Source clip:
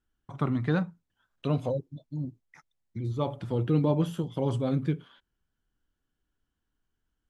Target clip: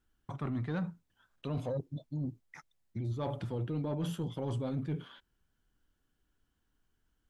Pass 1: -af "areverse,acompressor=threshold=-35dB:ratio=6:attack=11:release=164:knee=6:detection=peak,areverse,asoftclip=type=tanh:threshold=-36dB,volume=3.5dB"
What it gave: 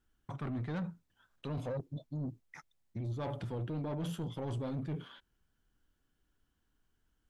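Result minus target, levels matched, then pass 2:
soft clip: distortion +8 dB
-af "areverse,acompressor=threshold=-35dB:ratio=6:attack=11:release=164:knee=6:detection=peak,areverse,asoftclip=type=tanh:threshold=-29.5dB,volume=3.5dB"

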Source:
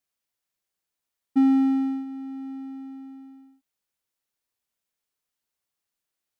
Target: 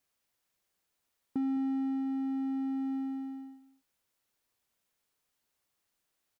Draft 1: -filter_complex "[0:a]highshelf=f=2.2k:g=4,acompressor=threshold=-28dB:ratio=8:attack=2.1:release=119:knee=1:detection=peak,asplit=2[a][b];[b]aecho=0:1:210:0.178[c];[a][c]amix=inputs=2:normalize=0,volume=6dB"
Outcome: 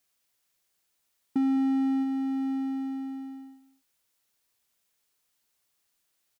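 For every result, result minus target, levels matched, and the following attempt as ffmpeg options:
compressor: peak gain reduction -6.5 dB; 4000 Hz band +4.5 dB
-filter_complex "[0:a]highshelf=f=2.2k:g=4,acompressor=threshold=-35.5dB:ratio=8:attack=2.1:release=119:knee=1:detection=peak,asplit=2[a][b];[b]aecho=0:1:210:0.178[c];[a][c]amix=inputs=2:normalize=0,volume=6dB"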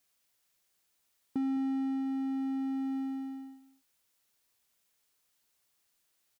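4000 Hz band +4.5 dB
-filter_complex "[0:a]highshelf=f=2.2k:g=-3,acompressor=threshold=-35.5dB:ratio=8:attack=2.1:release=119:knee=1:detection=peak,asplit=2[a][b];[b]aecho=0:1:210:0.178[c];[a][c]amix=inputs=2:normalize=0,volume=6dB"

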